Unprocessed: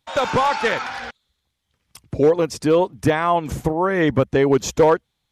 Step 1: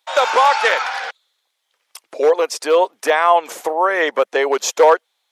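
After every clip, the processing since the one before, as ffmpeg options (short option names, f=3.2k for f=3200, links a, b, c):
-af "highpass=f=500:w=0.5412,highpass=f=500:w=1.3066,volume=6dB"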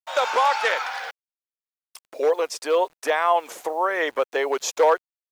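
-af "acrusher=bits=7:mix=0:aa=0.000001,volume=-6.5dB"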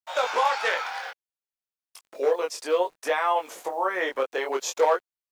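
-af "flanger=delay=19.5:depth=3.5:speed=0.58"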